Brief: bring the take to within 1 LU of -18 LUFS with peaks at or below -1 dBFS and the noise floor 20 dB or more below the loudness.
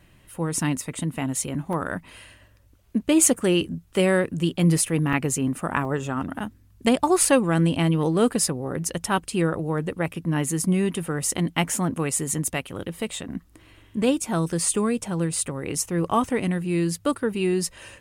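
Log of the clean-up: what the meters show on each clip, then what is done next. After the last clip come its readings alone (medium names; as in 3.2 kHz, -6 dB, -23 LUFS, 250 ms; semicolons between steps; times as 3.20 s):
dropouts 4; longest dropout 2.3 ms; loudness -24.0 LUFS; peak level -5.0 dBFS; loudness target -18.0 LUFS
-> interpolate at 1.73/5.13/5.85/11.76 s, 2.3 ms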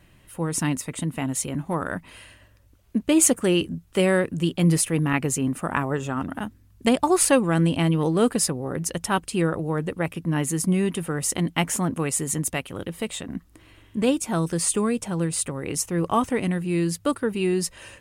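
dropouts 0; loudness -24.0 LUFS; peak level -5.0 dBFS; loudness target -18.0 LUFS
-> trim +6 dB; peak limiter -1 dBFS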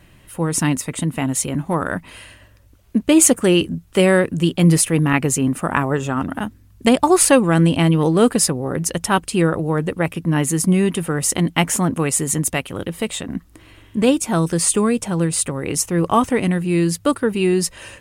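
loudness -18.0 LUFS; peak level -1.0 dBFS; noise floor -50 dBFS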